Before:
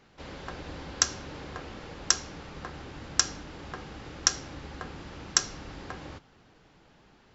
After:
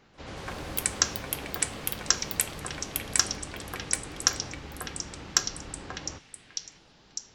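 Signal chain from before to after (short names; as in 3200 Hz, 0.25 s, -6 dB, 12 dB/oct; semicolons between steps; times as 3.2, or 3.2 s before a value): echoes that change speed 0.138 s, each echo +6 st, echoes 3; delay with a stepping band-pass 0.602 s, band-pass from 2600 Hz, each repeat 0.7 oct, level -5.5 dB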